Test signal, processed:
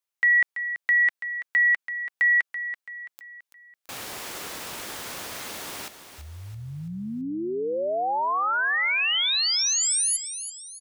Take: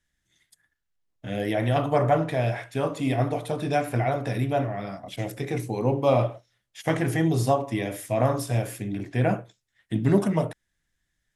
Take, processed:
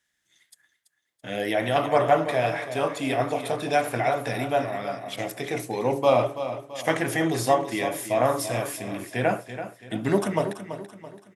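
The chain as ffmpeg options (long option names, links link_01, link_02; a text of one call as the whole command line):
ffmpeg -i in.wav -af "highpass=frequency=540:poles=1,aecho=1:1:333|666|999|1332:0.282|0.121|0.0521|0.0224,volume=4.5dB" out.wav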